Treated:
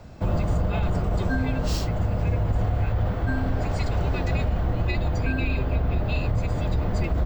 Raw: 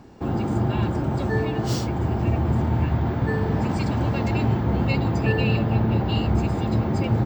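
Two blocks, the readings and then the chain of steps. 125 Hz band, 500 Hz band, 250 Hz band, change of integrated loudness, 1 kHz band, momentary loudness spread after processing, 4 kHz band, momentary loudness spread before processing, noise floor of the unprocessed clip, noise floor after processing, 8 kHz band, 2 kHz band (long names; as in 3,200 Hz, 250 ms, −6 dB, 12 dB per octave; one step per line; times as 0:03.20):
−2.5 dB, −3.5 dB, −6.5 dB, −2.5 dB, −4.0 dB, 1 LU, −3.5 dB, 3 LU, −27 dBFS, −28 dBFS, can't be measured, −1.0 dB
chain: frequency shifter −180 Hz
speech leveller 2 s
brickwall limiter −15 dBFS, peak gain reduction 6 dB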